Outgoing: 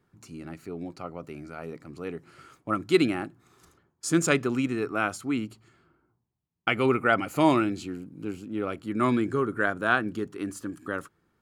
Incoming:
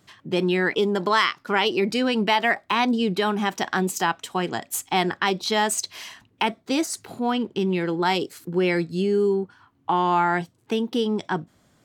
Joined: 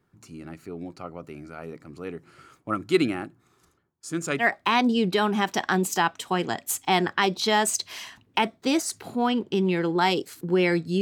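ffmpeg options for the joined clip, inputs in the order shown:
ffmpeg -i cue0.wav -i cue1.wav -filter_complex "[0:a]asettb=1/sr,asplit=3[link_01][link_02][link_03];[link_01]atrim=end=2.994[link_04];[link_02]atrim=start=2.99:end=4.45,asetpts=PTS-STARTPTS,afade=type=in:duration=0.004:curve=qsin,afade=type=out:start_time=1.456:duration=0.004:curve=qsin,tremolo=f=0.5:d=0.57[link_05];[link_03]atrim=start=4.446[link_06];[link_04][link_05]acrossfade=duration=0.004:curve1=hsin:curve2=qsin[link_07];[link_07][link_06]acrossfade=duration=0.004:curve1=qsin:curve2=hsin,apad=whole_dur=11.01,atrim=end=11.01,atrim=end=4.45,asetpts=PTS-STARTPTS[link_08];[1:a]atrim=start=2.41:end=9.05,asetpts=PTS-STARTPTS[link_09];[link_08][link_09]acrossfade=duration=0.08:curve1=tri:curve2=tri" out.wav

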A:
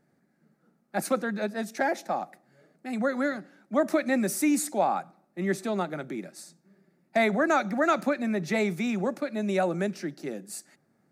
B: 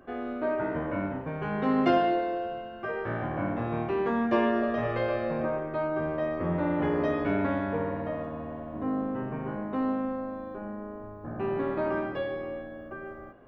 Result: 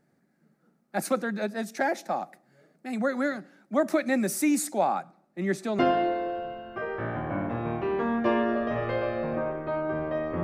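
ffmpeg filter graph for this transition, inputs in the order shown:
ffmpeg -i cue0.wav -i cue1.wav -filter_complex "[0:a]asettb=1/sr,asplit=3[link_01][link_02][link_03];[link_01]atrim=end=4.924[link_04];[link_02]atrim=start=4.92:end=5.79,asetpts=PTS-STARTPTS,afade=type=in:duration=0.004:curve=qsin,afade=type=out:start_time=0.866:duration=0.004:curve=qsin,highshelf=frequency=11000:gain=-8.5[link_05];[link_03]atrim=start=5.786[link_06];[link_04][link_05]acrossfade=duration=0.004:curve1=hsin:curve2=qsin[link_07];[link_07][link_06]acrossfade=duration=0.004:curve1=qsin:curve2=hsin,apad=whole_dur=10.43,atrim=end=10.43,atrim=end=5.792[link_08];[1:a]atrim=start=1.858:end=6.5[link_09];[link_08][link_09]acrossfade=duration=0.004:curve1=hsin:curve2=hsin" out.wav

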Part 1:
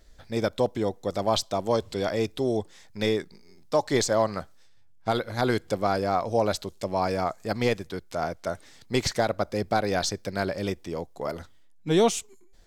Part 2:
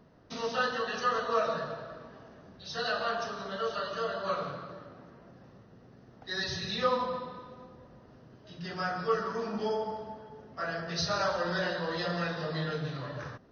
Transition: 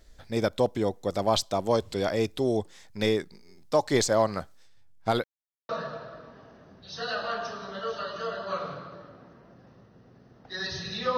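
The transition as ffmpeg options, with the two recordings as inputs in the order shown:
ffmpeg -i cue0.wav -i cue1.wav -filter_complex "[0:a]apad=whole_dur=11.17,atrim=end=11.17,asplit=2[link_01][link_02];[link_01]atrim=end=5.24,asetpts=PTS-STARTPTS,afade=type=out:start_time=5.236:duration=0.004:curve=hsin[link_03];[link_02]atrim=start=5.24:end=5.69,asetpts=PTS-STARTPTS,volume=0[link_04];[1:a]atrim=start=1.46:end=6.94,asetpts=PTS-STARTPTS,afade=type=in:duration=0.004:curve=hsin[link_05];[link_03][link_04][link_05]concat=n=3:v=0:a=1" out.wav

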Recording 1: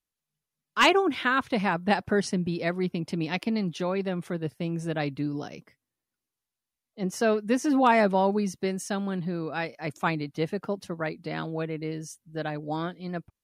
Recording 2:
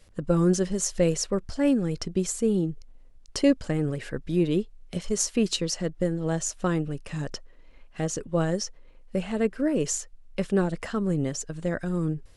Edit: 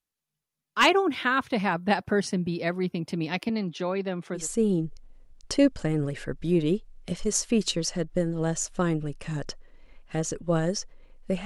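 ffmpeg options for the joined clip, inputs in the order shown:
ffmpeg -i cue0.wav -i cue1.wav -filter_complex "[0:a]asettb=1/sr,asplit=3[link_01][link_02][link_03];[link_01]atrim=end=3.494[link_04];[link_02]atrim=start=3.49:end=4.48,asetpts=PTS-STARTPTS,afade=type=in:duration=0.004:curve=qsin,afade=type=out:start_time=0.986:duration=0.004:curve=qsin,highpass=160,lowpass=6600[link_05];[link_03]atrim=start=4.476[link_06];[link_04][link_05]acrossfade=duration=0.004:curve1=hsin:curve2=qsin[link_07];[link_07][link_06]acrossfade=duration=0.004:curve1=qsin:curve2=hsin,apad=whole_dur=11.45,atrim=end=11.45,atrim=end=4.48,asetpts=PTS-STARTPTS[link_08];[1:a]atrim=start=2.17:end=9.3,asetpts=PTS-STARTPTS[link_09];[link_08][link_09]acrossfade=duration=0.16:curve1=tri:curve2=tri" out.wav

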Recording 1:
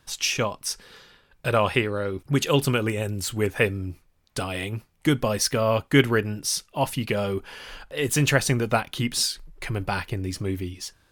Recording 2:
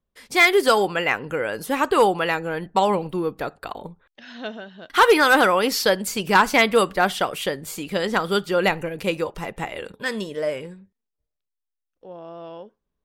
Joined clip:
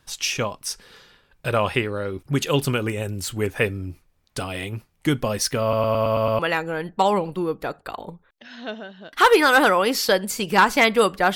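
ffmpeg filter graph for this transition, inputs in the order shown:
ffmpeg -i cue0.wav -i cue1.wav -filter_complex "[0:a]apad=whole_dur=11.35,atrim=end=11.35,asplit=7[link_01][link_02][link_03][link_04][link_05][link_06][link_07];[link_01]atrim=end=5.732[link_08];[link_02]atrim=start=5.618:end=5.732[link_09];[link_03]atrim=start=5.618:end=5.732[link_10];[link_04]atrim=start=5.618:end=5.732[link_11];[link_05]atrim=start=5.618:end=5.732[link_12];[link_06]atrim=start=5.618:end=5.732[link_13];[link_07]atrim=start=5.618:end=5.732[link_14];[1:a]atrim=start=2.158:end=7.12[link_15];[link_08][link_09]acrossfade=duration=0.004:curve1=hsin:curve2=hsin[link_16];[link_16][link_10]acrossfade=duration=0.004:curve1=hsin:curve2=hsin[link_17];[link_17][link_11]acrossfade=duration=0.004:curve1=hsin:curve2=hsin[link_18];[link_18][link_12]acrossfade=duration=0.004:curve1=hsin:curve2=hsin[link_19];[link_19][link_13]acrossfade=duration=0.004:curve1=hsin:curve2=hsin[link_20];[link_20][link_14]acrossfade=duration=0.004:curve1=hsin:curve2=hsin[link_21];[link_21][link_15]acrossfade=duration=0.004:curve1=hsin:curve2=hsin" out.wav

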